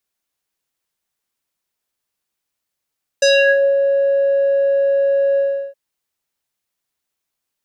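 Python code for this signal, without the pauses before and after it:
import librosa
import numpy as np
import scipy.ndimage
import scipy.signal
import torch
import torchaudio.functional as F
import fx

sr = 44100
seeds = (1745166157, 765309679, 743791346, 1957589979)

y = fx.sub_voice(sr, note=73, wave='square', cutoff_hz=840.0, q=3.4, env_oct=3.0, env_s=0.42, attack_ms=5.7, decay_s=0.52, sustain_db=-6.5, release_s=0.36, note_s=2.16, slope=12)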